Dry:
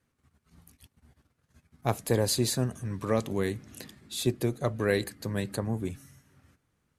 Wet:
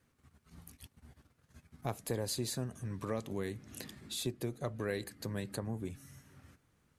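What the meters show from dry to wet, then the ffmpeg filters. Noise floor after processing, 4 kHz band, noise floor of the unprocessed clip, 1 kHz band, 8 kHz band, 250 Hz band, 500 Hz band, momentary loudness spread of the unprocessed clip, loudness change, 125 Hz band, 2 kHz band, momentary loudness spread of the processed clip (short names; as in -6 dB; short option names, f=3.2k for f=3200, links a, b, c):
-74 dBFS, -7.5 dB, -76 dBFS, -9.5 dB, -8.0 dB, -9.0 dB, -10.0 dB, 12 LU, -9.0 dB, -9.0 dB, -9.5 dB, 19 LU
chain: -af "acompressor=threshold=-46dB:ratio=2,volume=2.5dB"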